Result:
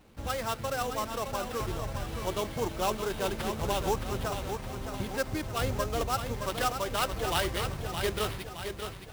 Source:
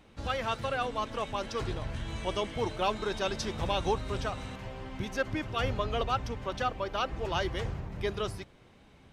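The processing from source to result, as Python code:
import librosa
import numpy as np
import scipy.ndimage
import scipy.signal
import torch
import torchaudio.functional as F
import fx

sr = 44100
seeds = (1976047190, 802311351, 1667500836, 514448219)

y = fx.high_shelf(x, sr, hz=2200.0, db=fx.steps((0.0, -3.0), (6.33, 7.5)))
y = fx.sample_hold(y, sr, seeds[0], rate_hz=6700.0, jitter_pct=20)
y = fx.echo_crushed(y, sr, ms=617, feedback_pct=55, bits=9, wet_db=-7.0)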